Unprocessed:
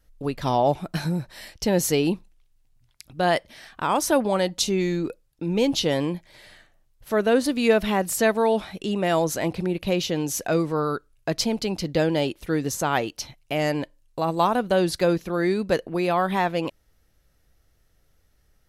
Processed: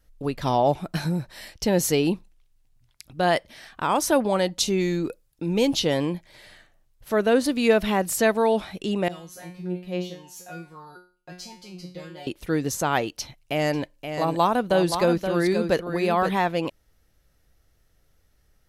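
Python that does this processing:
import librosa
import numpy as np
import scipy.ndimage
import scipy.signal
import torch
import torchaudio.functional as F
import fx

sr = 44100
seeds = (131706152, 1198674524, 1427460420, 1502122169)

y = fx.high_shelf(x, sr, hz=fx.line((4.67, 10000.0), (5.74, 5700.0)), db=6.5, at=(4.67, 5.74), fade=0.02)
y = fx.comb_fb(y, sr, f0_hz=180.0, decay_s=0.39, harmonics='all', damping=0.0, mix_pct=100, at=(9.08, 12.27))
y = fx.echo_single(y, sr, ms=525, db=-7.5, at=(13.73, 16.29), fade=0.02)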